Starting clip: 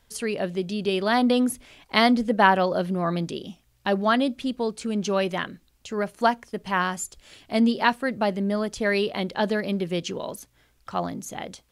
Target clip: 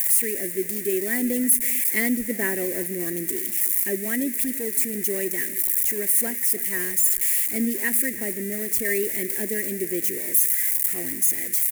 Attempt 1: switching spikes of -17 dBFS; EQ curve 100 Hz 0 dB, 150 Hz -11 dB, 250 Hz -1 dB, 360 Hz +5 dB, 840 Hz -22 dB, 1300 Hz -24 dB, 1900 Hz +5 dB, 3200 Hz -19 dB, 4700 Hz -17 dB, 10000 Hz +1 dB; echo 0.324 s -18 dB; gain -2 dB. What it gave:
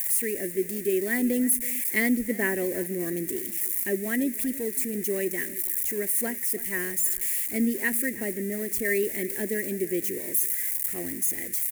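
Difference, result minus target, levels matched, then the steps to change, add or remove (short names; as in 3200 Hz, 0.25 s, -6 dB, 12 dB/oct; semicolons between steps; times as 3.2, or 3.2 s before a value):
switching spikes: distortion -6 dB
change: switching spikes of -11 dBFS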